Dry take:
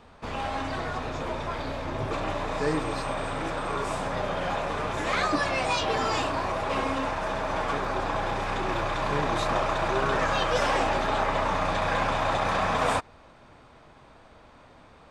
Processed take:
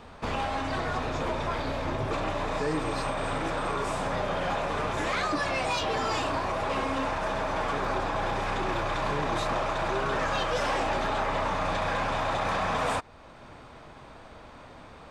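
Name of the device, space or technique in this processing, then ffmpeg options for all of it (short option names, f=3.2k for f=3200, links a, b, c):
soft clipper into limiter: -af "asoftclip=type=tanh:threshold=-18.5dB,alimiter=level_in=2dB:limit=-24dB:level=0:latency=1:release=493,volume=-2dB,volume=5dB"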